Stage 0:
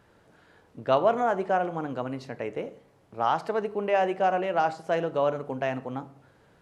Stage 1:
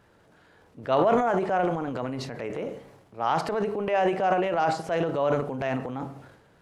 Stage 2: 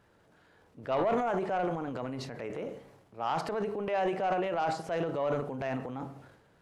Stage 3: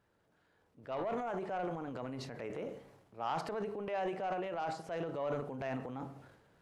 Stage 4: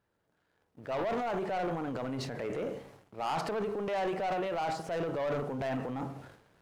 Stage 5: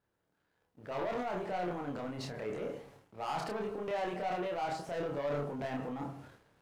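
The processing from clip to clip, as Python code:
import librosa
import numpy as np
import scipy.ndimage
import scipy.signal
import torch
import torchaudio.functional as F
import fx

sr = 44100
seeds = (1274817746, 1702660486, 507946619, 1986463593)

y1 = fx.transient(x, sr, attack_db=-3, sustain_db=10)
y2 = 10.0 ** (-15.5 / 20.0) * np.tanh(y1 / 10.0 ** (-15.5 / 20.0))
y2 = y2 * 10.0 ** (-5.0 / 20.0)
y3 = fx.rider(y2, sr, range_db=4, speed_s=2.0)
y3 = y3 * 10.0 ** (-6.5 / 20.0)
y4 = fx.leveller(y3, sr, passes=2)
y5 = fx.doubler(y4, sr, ms=28.0, db=-2.5)
y5 = y5 * 10.0 ** (-5.0 / 20.0)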